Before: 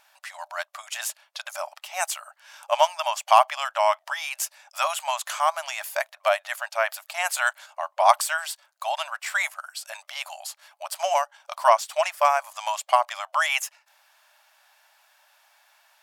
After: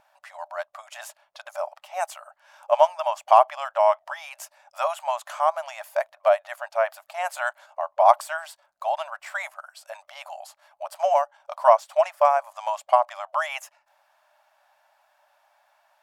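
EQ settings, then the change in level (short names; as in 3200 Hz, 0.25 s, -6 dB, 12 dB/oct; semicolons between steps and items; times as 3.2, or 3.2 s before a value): tilt shelf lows +9 dB, about 1200 Hz; low shelf 460 Hz +8.5 dB; -3.5 dB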